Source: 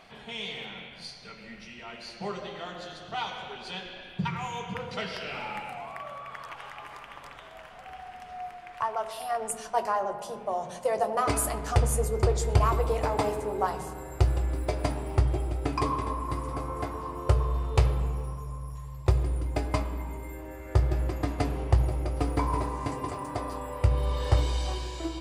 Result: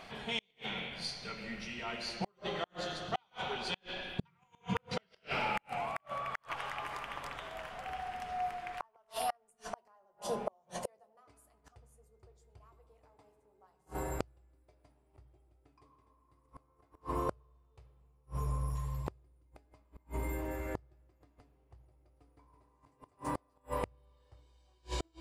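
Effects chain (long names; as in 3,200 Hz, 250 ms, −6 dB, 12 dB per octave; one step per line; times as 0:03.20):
gate with flip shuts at −25 dBFS, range −40 dB
level +2.5 dB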